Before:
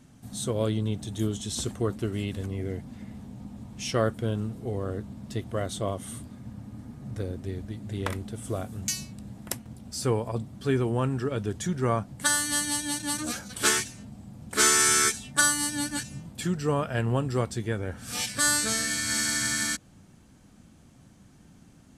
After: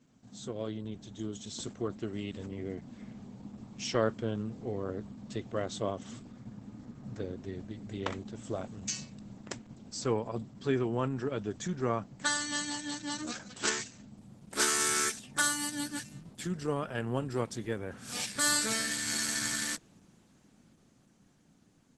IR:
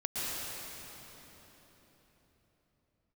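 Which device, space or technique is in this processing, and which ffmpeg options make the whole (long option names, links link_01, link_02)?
video call: -af "highpass=140,dynaudnorm=framelen=470:gausssize=9:maxgain=6.5dB,volume=-8.5dB" -ar 48000 -c:a libopus -b:a 12k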